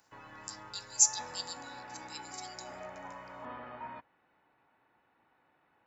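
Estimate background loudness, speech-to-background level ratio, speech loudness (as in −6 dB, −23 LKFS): −46.5 LKFS, 17.0 dB, −29.5 LKFS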